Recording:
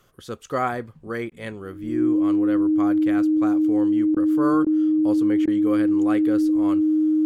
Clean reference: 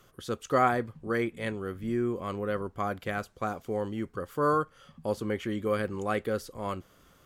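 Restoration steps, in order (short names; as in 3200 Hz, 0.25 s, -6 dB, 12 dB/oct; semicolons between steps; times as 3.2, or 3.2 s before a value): notch 310 Hz, Q 30; interpolate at 1.3/4.15/4.65/5.46, 14 ms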